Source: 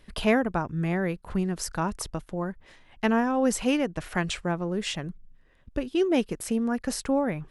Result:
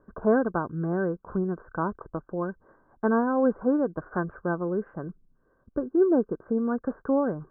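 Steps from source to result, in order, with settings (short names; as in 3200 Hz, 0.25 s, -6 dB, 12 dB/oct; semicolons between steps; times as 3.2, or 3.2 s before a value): rippled Chebyshev low-pass 1600 Hz, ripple 6 dB; low shelf 69 Hz -11.5 dB; gain +4 dB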